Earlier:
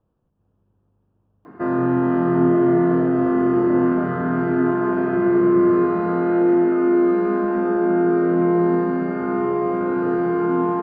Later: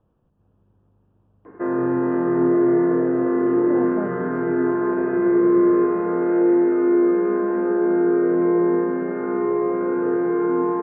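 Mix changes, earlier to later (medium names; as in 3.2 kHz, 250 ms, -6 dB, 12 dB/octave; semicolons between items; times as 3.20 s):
speech +4.5 dB; background: add cabinet simulation 150–2200 Hz, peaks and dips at 160 Hz -7 dB, 230 Hz -7 dB, 480 Hz +7 dB, 700 Hz -7 dB, 1.3 kHz -6 dB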